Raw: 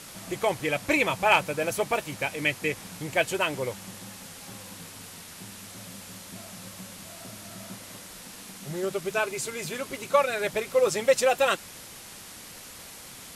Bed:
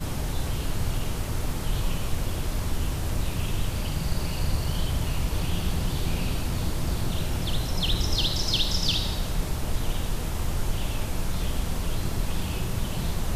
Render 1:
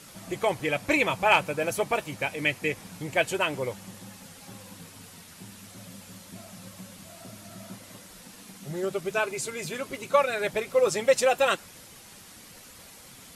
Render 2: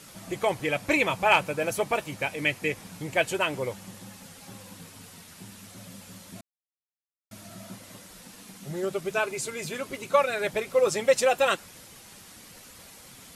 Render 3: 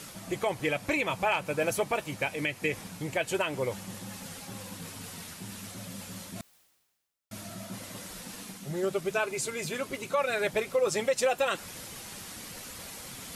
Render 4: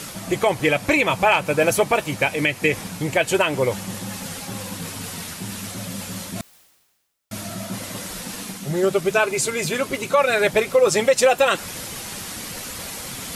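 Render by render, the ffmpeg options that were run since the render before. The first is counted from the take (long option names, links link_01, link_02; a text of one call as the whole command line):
ffmpeg -i in.wav -af "afftdn=noise_reduction=6:noise_floor=-45" out.wav
ffmpeg -i in.wav -filter_complex "[0:a]asplit=3[link_01][link_02][link_03];[link_01]atrim=end=6.41,asetpts=PTS-STARTPTS,afade=type=out:start_time=6.406:duration=0.004:curve=hsin[link_04];[link_02]atrim=start=6.41:end=7.31,asetpts=PTS-STARTPTS,volume=0[link_05];[link_03]atrim=start=7.31,asetpts=PTS-STARTPTS,afade=type=in:duration=0.004:curve=hsin[link_06];[link_04][link_05][link_06]concat=n=3:v=0:a=1" out.wav
ffmpeg -i in.wav -af "alimiter=limit=-17.5dB:level=0:latency=1:release=163,areverse,acompressor=mode=upward:threshold=-35dB:ratio=2.5,areverse" out.wav
ffmpeg -i in.wav -af "volume=10.5dB" out.wav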